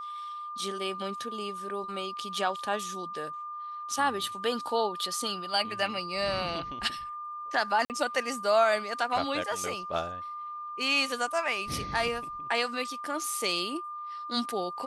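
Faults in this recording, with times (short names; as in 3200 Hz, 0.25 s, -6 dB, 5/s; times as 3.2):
tone 1200 Hz -36 dBFS
7.85–7.9 gap 48 ms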